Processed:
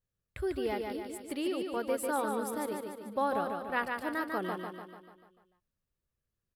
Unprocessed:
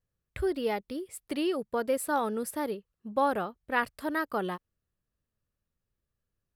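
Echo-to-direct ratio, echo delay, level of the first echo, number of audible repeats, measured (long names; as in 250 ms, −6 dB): −3.0 dB, 147 ms, −4.5 dB, 6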